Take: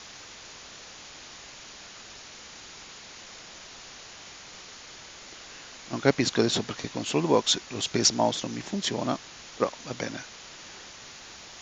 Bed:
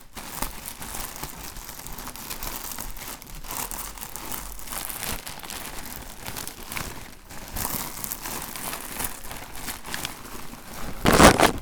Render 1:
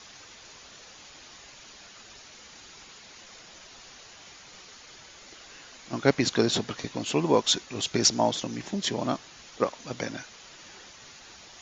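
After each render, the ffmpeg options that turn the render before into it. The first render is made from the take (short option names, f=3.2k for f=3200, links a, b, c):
-af "afftdn=nr=6:nf=-46"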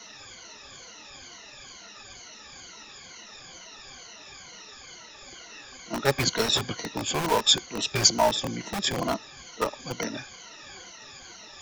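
-filter_complex "[0:a]afftfilt=real='re*pow(10,16/40*sin(2*PI*(1.9*log(max(b,1)*sr/1024/100)/log(2)-(-2.2)*(pts-256)/sr)))':imag='im*pow(10,16/40*sin(2*PI*(1.9*log(max(b,1)*sr/1024/100)/log(2)-(-2.2)*(pts-256)/sr)))':win_size=1024:overlap=0.75,acrossover=split=160|460|2500[a][b][c][d];[b]aeval=exprs='(mod(21.1*val(0)+1,2)-1)/21.1':c=same[e];[a][e][c][d]amix=inputs=4:normalize=0"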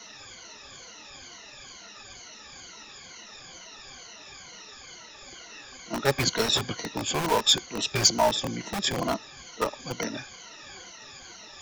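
-af "asoftclip=type=tanh:threshold=-6.5dB"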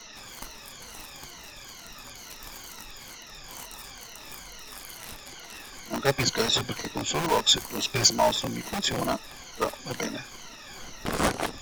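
-filter_complex "[1:a]volume=-12.5dB[a];[0:a][a]amix=inputs=2:normalize=0"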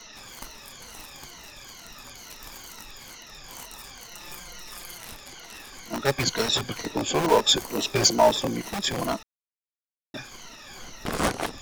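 -filter_complex "[0:a]asettb=1/sr,asplit=3[a][b][c];[a]atrim=end=4.114[d];[b]atrim=start=4.11:end=4.98,asetpts=PTS-STARTPTS,afade=t=in:d=0.004:c=qsin,afade=t=out:st=0.866:d=0.004:c=qsin,aecho=1:1:5.7:0.65,atrim=end_sample=38367[e];[c]atrim=start=4.976[f];[d][e]acrossfade=d=0.004:c1=hsin:c2=qsin[g];[g][f]acrossfade=d=0.004:c1=qsin:c2=hsin,asettb=1/sr,asplit=3[h][i][j];[h]atrim=end=6.864[k];[i]atrim=start=6.86:end=8.62,asetpts=PTS-STARTPTS,afade=t=in:d=0.004:c=qsin,afade=t=out:st=1.756:d=0.004:c=qsin,equalizer=f=430:t=o:w=1.9:g=7[l];[j]atrim=start=8.616[m];[k][l]acrossfade=d=0.004:c1=hsin:c2=qsin[n];[n][m]acrossfade=d=0.004:c1=qsin:c2=hsin,asplit=3[o][p][q];[o]atrim=end=9.23,asetpts=PTS-STARTPTS,afade=t=out:st=9.226:d=0.004:c=hsin[r];[p]atrim=start=9.23:end=10.14,asetpts=PTS-STARTPTS,volume=0[s];[q]atrim=start=10.14,asetpts=PTS-STARTPTS,afade=t=in:d=0.004:c=hsin[t];[r][s][t]concat=n=3:v=0:a=1"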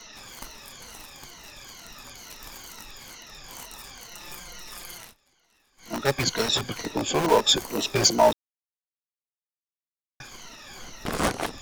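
-filter_complex "[0:a]asettb=1/sr,asplit=3[a][b][c];[a]atrim=end=0.974[d];[b]atrim=start=0.97:end=1.45,asetpts=PTS-STARTPTS,afade=t=in:d=0.004:c=qsin,afade=t=out:st=0.476:d=0.004:c=qsin,aeval=exprs='if(lt(val(0),0),0.708*val(0),val(0))':c=same[e];[c]atrim=start=1.446[f];[d][e]acrossfade=d=0.004:c1=hsin:c2=qsin[g];[g][f]acrossfade=d=0.004:c1=qsin:c2=hsin,asplit=5[h][i][j][k][l];[h]atrim=end=5.14,asetpts=PTS-STARTPTS,afade=t=out:st=5:d=0.14:silence=0.0707946[m];[i]atrim=start=5.14:end=5.77,asetpts=PTS-STARTPTS,volume=-23dB[n];[j]atrim=start=5.77:end=8.33,asetpts=PTS-STARTPTS,afade=t=in:d=0.14:silence=0.0707946,afade=t=out:st=2.556:d=0.004:c=hsin[o];[k]atrim=start=8.33:end=10.2,asetpts=PTS-STARTPTS,volume=0[p];[l]atrim=start=10.2,asetpts=PTS-STARTPTS,afade=t=in:d=0.004:c=hsin[q];[m][n][o][p][q]concat=n=5:v=0:a=1"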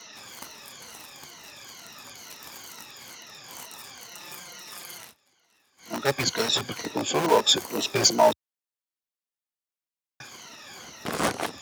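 -af "highpass=f=76:w=0.5412,highpass=f=76:w=1.3066,lowshelf=f=150:g=-6"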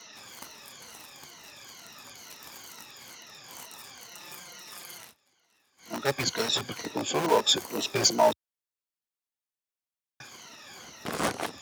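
-af "volume=-3dB"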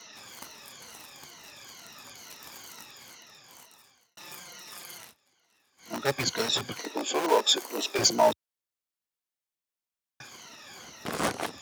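-filter_complex "[0:a]asettb=1/sr,asplit=3[a][b][c];[a]atrim=end=6.794[d];[b]atrim=start=6.79:end=7.99,asetpts=PTS-STARTPTS,afade=t=in:d=0.004:c=qsin,afade=t=out:st=1.196:d=0.004:c=qsin,highpass=f=260:w=0.5412,highpass=f=260:w=1.3066[e];[c]atrim=start=7.986[f];[d][e]acrossfade=d=0.004:c1=hsin:c2=qsin[g];[g][f]acrossfade=d=0.004:c1=qsin:c2=hsin,asplit=2[h][i];[h]atrim=end=4.17,asetpts=PTS-STARTPTS,afade=t=out:st=2.8:d=1.37[j];[i]atrim=start=4.17,asetpts=PTS-STARTPTS,afade=t=in:d=0.004:c=hsin[k];[j][k]concat=n=2:v=0:a=1"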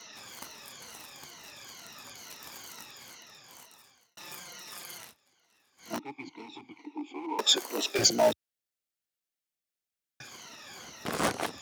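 -filter_complex "[0:a]asettb=1/sr,asplit=3[a][b][c];[a]atrim=end=5.994[d];[b]atrim=start=5.99:end=7.39,asetpts=PTS-STARTPTS,afade=t=in:d=0.004:c=qsin,afade=t=out:st=1.396:d=0.004:c=qsin,asplit=3[e][f][g];[e]bandpass=f=300:t=q:w=8,volume=0dB[h];[f]bandpass=f=870:t=q:w=8,volume=-6dB[i];[g]bandpass=f=2.24k:t=q:w=8,volume=-9dB[j];[h][i][j]amix=inputs=3:normalize=0[k];[c]atrim=start=7.386[l];[d][k]acrossfade=d=0.004:c1=hsin:c2=qsin[m];[m][l]acrossfade=d=0.004:c1=qsin:c2=hsin,asettb=1/sr,asplit=3[n][o][p];[n]atrim=end=7.894[q];[o]atrim=start=7.89:end=10.27,asetpts=PTS-STARTPTS,afade=t=in:d=0.004:c=qsin,afade=t=out:st=2.376:d=0.004:c=qsin,equalizer=f=1k:t=o:w=0.35:g=-12.5[r];[p]atrim=start=10.266[s];[q][r]acrossfade=d=0.004:c1=hsin:c2=qsin[t];[t][s]acrossfade=d=0.004:c1=qsin:c2=hsin"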